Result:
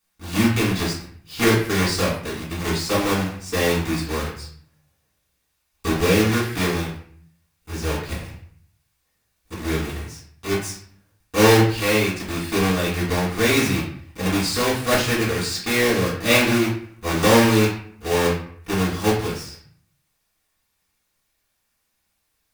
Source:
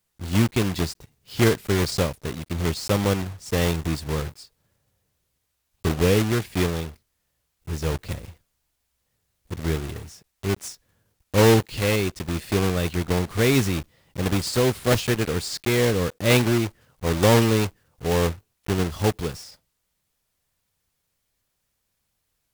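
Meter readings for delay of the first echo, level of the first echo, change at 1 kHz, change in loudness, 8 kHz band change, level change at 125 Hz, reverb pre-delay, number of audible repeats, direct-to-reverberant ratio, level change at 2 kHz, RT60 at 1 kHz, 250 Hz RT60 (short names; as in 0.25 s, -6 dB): none, none, +5.0 dB, +2.5 dB, +3.5 dB, -1.0 dB, 3 ms, none, -6.5 dB, +6.0 dB, 0.55 s, 0.75 s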